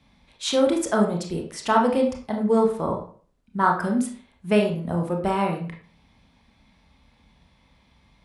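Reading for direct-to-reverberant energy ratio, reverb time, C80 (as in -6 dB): 1.0 dB, 0.45 s, 11.0 dB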